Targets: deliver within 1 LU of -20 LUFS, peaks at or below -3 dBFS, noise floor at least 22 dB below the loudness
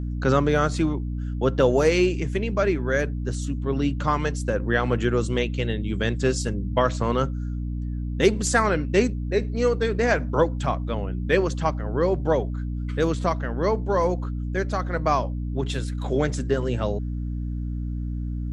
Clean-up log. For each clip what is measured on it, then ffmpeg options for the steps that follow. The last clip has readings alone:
hum 60 Hz; harmonics up to 300 Hz; hum level -26 dBFS; loudness -24.5 LUFS; peak -5.5 dBFS; loudness target -20.0 LUFS
-> -af "bandreject=f=60:t=h:w=6,bandreject=f=120:t=h:w=6,bandreject=f=180:t=h:w=6,bandreject=f=240:t=h:w=6,bandreject=f=300:t=h:w=6"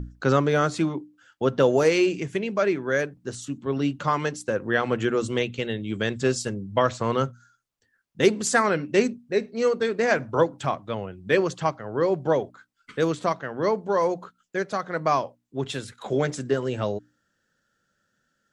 hum none; loudness -25.0 LUFS; peak -6.5 dBFS; loudness target -20.0 LUFS
-> -af "volume=5dB,alimiter=limit=-3dB:level=0:latency=1"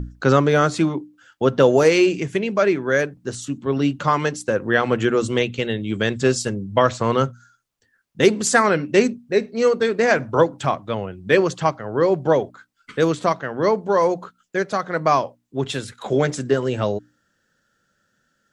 loudness -20.0 LUFS; peak -3.0 dBFS; noise floor -69 dBFS

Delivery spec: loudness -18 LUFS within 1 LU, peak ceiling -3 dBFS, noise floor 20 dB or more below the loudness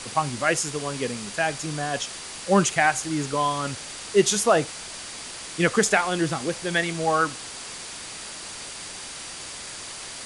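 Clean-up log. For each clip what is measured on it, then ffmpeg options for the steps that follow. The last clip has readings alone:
steady tone 4700 Hz; tone level -47 dBFS; noise floor -38 dBFS; noise floor target -46 dBFS; loudness -25.5 LUFS; peak -6.5 dBFS; loudness target -18.0 LUFS
-> -af "bandreject=f=4.7k:w=30"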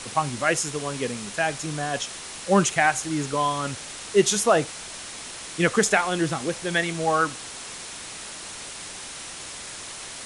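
steady tone none; noise floor -38 dBFS; noise floor target -46 dBFS
-> -af "afftdn=nr=8:nf=-38"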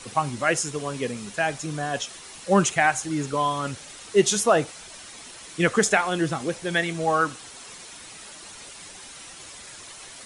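noise floor -43 dBFS; noise floor target -44 dBFS
-> -af "afftdn=nr=6:nf=-43"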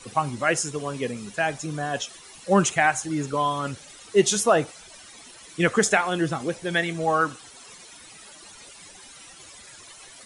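noise floor -47 dBFS; loudness -24.0 LUFS; peak -6.5 dBFS; loudness target -18.0 LUFS
-> -af "volume=6dB,alimiter=limit=-3dB:level=0:latency=1"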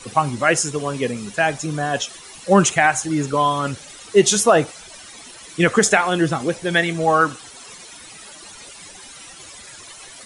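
loudness -18.5 LUFS; peak -3.0 dBFS; noise floor -41 dBFS

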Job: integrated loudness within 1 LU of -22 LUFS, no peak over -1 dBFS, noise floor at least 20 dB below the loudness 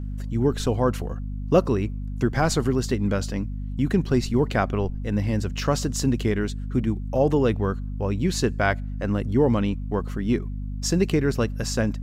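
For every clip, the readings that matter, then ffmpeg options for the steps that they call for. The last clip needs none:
hum 50 Hz; harmonics up to 250 Hz; hum level -28 dBFS; loudness -24.5 LUFS; peak -5.5 dBFS; loudness target -22.0 LUFS
-> -af "bandreject=f=50:t=h:w=4,bandreject=f=100:t=h:w=4,bandreject=f=150:t=h:w=4,bandreject=f=200:t=h:w=4,bandreject=f=250:t=h:w=4"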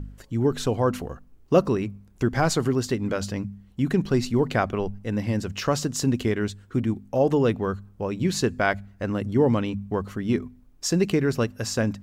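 hum none; loudness -25.5 LUFS; peak -6.0 dBFS; loudness target -22.0 LUFS
-> -af "volume=3.5dB"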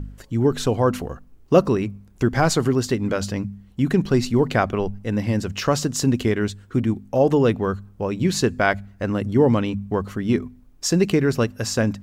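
loudness -22.0 LUFS; peak -2.5 dBFS; noise floor -50 dBFS

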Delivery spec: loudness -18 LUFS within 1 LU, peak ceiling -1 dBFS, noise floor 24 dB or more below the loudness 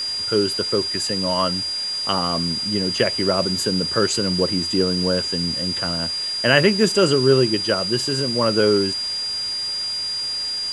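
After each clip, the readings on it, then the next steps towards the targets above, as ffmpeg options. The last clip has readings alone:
steady tone 4800 Hz; tone level -23 dBFS; noise floor -26 dBFS; noise floor target -44 dBFS; loudness -19.5 LUFS; peak -1.0 dBFS; loudness target -18.0 LUFS
-> -af "bandreject=f=4.8k:w=30"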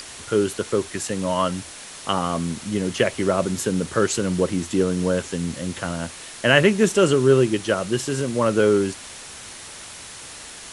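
steady tone none; noise floor -39 dBFS; noise floor target -46 dBFS
-> -af "afftdn=nr=7:nf=-39"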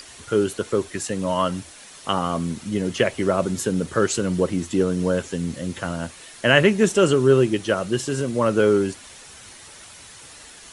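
noise floor -44 dBFS; noise floor target -46 dBFS
-> -af "afftdn=nr=6:nf=-44"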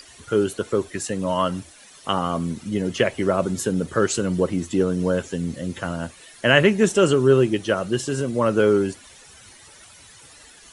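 noise floor -48 dBFS; loudness -22.0 LUFS; peak -1.0 dBFS; loudness target -18.0 LUFS
-> -af "volume=4dB,alimiter=limit=-1dB:level=0:latency=1"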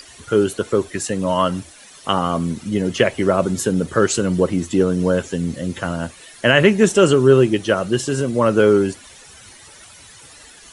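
loudness -18.0 LUFS; peak -1.0 dBFS; noise floor -44 dBFS

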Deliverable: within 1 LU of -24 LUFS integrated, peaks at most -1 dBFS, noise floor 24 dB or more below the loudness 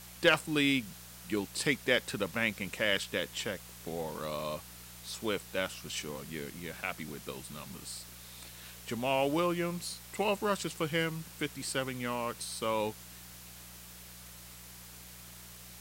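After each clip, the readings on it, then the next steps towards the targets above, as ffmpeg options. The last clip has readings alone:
hum 60 Hz; harmonics up to 180 Hz; hum level -54 dBFS; noise floor -50 dBFS; noise floor target -58 dBFS; loudness -33.5 LUFS; peak -13.5 dBFS; loudness target -24.0 LUFS
-> -af "bandreject=f=60:t=h:w=4,bandreject=f=120:t=h:w=4,bandreject=f=180:t=h:w=4"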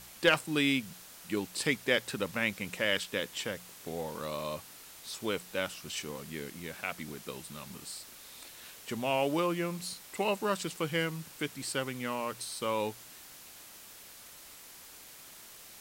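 hum none; noise floor -52 dBFS; noise floor target -58 dBFS
-> -af "afftdn=nr=6:nf=-52"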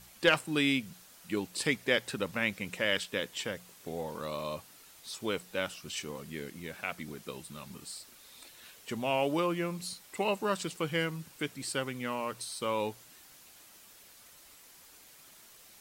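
noise floor -56 dBFS; noise floor target -58 dBFS
-> -af "afftdn=nr=6:nf=-56"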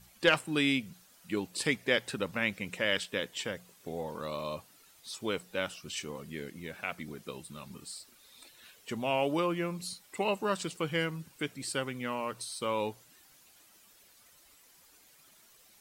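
noise floor -61 dBFS; loudness -34.0 LUFS; peak -13.0 dBFS; loudness target -24.0 LUFS
-> -af "volume=10dB"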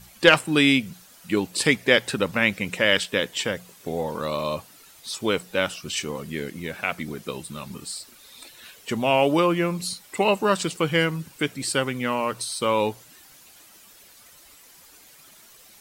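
loudness -24.0 LUFS; peak -3.0 dBFS; noise floor -51 dBFS

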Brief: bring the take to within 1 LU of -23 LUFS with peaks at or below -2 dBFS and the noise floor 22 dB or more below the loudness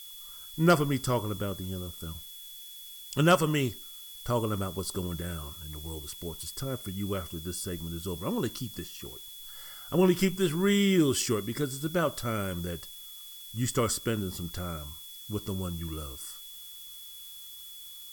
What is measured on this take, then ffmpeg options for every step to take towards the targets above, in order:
steady tone 3400 Hz; tone level -47 dBFS; noise floor -46 dBFS; noise floor target -53 dBFS; loudness -30.5 LUFS; peak -10.5 dBFS; loudness target -23.0 LUFS
-> -af "bandreject=f=3.4k:w=30"
-af "afftdn=nr=7:nf=-46"
-af "volume=7.5dB"

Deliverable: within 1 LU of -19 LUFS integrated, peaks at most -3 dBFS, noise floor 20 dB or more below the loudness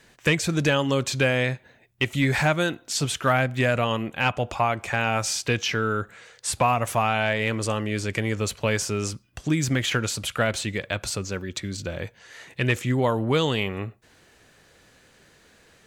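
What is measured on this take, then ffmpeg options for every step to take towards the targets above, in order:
loudness -25.0 LUFS; peak -11.0 dBFS; loudness target -19.0 LUFS
-> -af "volume=6dB"

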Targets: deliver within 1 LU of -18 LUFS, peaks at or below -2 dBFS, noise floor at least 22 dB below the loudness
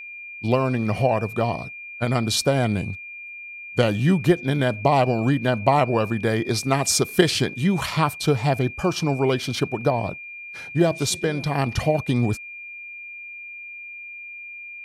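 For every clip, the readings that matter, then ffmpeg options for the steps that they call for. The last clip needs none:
steady tone 2400 Hz; tone level -35 dBFS; loudness -22.0 LUFS; peak -1.5 dBFS; loudness target -18.0 LUFS
-> -af "bandreject=f=2.4k:w=30"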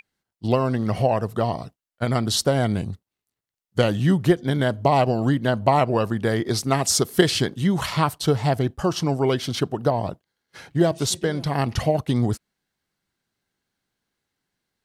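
steady tone none; loudness -22.5 LUFS; peak -1.5 dBFS; loudness target -18.0 LUFS
-> -af "volume=4.5dB,alimiter=limit=-2dB:level=0:latency=1"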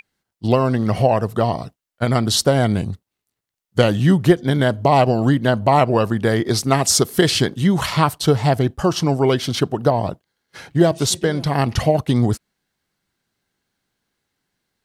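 loudness -18.0 LUFS; peak -2.0 dBFS; noise floor -82 dBFS

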